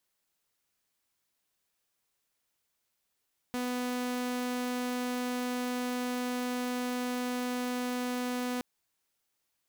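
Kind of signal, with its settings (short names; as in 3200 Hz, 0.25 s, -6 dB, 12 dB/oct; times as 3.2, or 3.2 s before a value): tone saw 248 Hz -28.5 dBFS 5.07 s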